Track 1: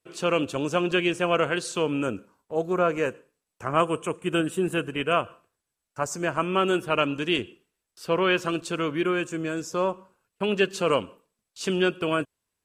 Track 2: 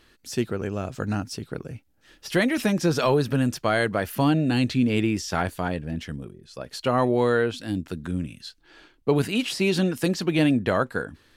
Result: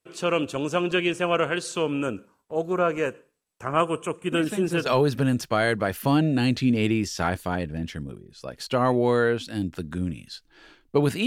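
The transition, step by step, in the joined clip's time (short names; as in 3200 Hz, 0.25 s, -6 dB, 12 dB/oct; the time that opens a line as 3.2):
track 1
4.32 add track 2 from 2.45 s 0.54 s -10 dB
4.86 switch to track 2 from 2.99 s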